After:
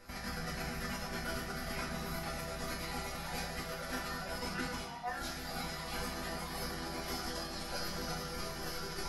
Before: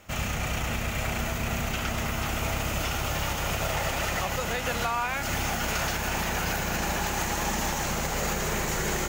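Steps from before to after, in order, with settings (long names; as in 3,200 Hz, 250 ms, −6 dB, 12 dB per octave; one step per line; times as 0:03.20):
reverb reduction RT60 1.2 s
compressor whose output falls as the input rises −34 dBFS, ratio −0.5
resonators tuned to a chord E3 minor, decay 0.26 s
formants moved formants −5 semitones
on a send: convolution reverb RT60 1.1 s, pre-delay 3 ms, DRR 1.5 dB
on the sum: level +8 dB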